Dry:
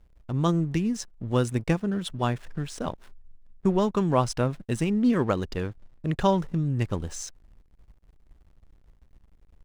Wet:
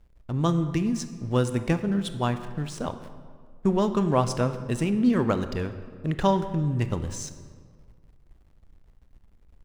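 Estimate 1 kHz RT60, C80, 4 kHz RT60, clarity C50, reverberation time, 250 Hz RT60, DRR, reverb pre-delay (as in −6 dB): 1.8 s, 12.5 dB, 1.1 s, 11.5 dB, 1.9 s, 2.0 s, 10.0 dB, 22 ms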